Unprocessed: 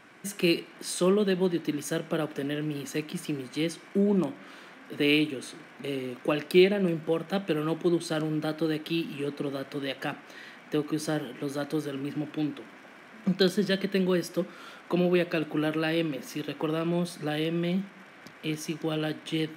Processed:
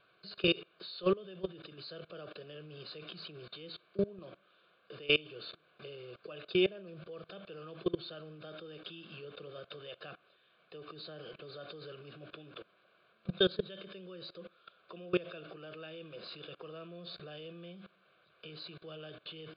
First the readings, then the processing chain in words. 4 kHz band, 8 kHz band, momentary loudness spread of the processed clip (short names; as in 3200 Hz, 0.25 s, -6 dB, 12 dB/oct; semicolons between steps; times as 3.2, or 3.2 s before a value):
-4.5 dB, under -40 dB, 20 LU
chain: nonlinear frequency compression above 3500 Hz 4:1; level quantiser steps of 22 dB; fixed phaser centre 1300 Hz, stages 8; gain +1 dB